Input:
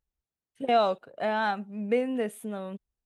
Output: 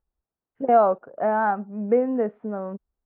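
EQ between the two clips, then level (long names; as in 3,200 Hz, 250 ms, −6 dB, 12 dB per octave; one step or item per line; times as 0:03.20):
low-pass filter 1,400 Hz 24 dB per octave
parametric band 110 Hz −5.5 dB 1.5 octaves
+6.5 dB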